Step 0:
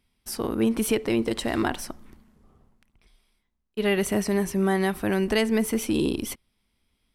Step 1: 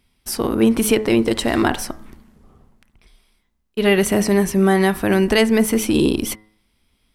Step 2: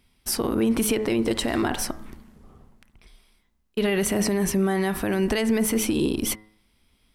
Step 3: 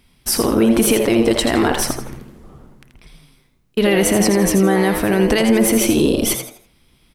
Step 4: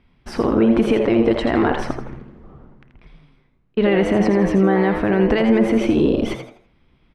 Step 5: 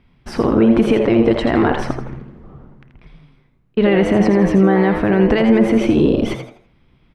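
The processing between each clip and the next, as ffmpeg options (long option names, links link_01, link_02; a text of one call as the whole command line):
ffmpeg -i in.wav -af "bandreject=frequency=106.9:width_type=h:width=4,bandreject=frequency=213.8:width_type=h:width=4,bandreject=frequency=320.7:width_type=h:width=4,bandreject=frequency=427.6:width_type=h:width=4,bandreject=frequency=534.5:width_type=h:width=4,bandreject=frequency=641.4:width_type=h:width=4,bandreject=frequency=748.3:width_type=h:width=4,bandreject=frequency=855.2:width_type=h:width=4,bandreject=frequency=962.1:width_type=h:width=4,bandreject=frequency=1069:width_type=h:width=4,bandreject=frequency=1175.9:width_type=h:width=4,bandreject=frequency=1282.8:width_type=h:width=4,bandreject=frequency=1389.7:width_type=h:width=4,bandreject=frequency=1496.6:width_type=h:width=4,bandreject=frequency=1603.5:width_type=h:width=4,bandreject=frequency=1710.4:width_type=h:width=4,bandreject=frequency=1817.3:width_type=h:width=4,bandreject=frequency=1924.2:width_type=h:width=4,bandreject=frequency=2031.1:width_type=h:width=4,volume=8dB" out.wav
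ffmpeg -i in.wav -af "alimiter=limit=-14dB:level=0:latency=1:release=70" out.wav
ffmpeg -i in.wav -filter_complex "[0:a]asplit=5[link_01][link_02][link_03][link_04][link_05];[link_02]adelay=82,afreqshift=120,volume=-7.5dB[link_06];[link_03]adelay=164,afreqshift=240,volume=-17.7dB[link_07];[link_04]adelay=246,afreqshift=360,volume=-27.8dB[link_08];[link_05]adelay=328,afreqshift=480,volume=-38dB[link_09];[link_01][link_06][link_07][link_08][link_09]amix=inputs=5:normalize=0,volume=7.5dB" out.wav
ffmpeg -i in.wav -af "lowpass=2100,volume=-1dB" out.wav
ffmpeg -i in.wav -af "equalizer=frequency=130:width_type=o:width=0.98:gain=4,volume=2dB" out.wav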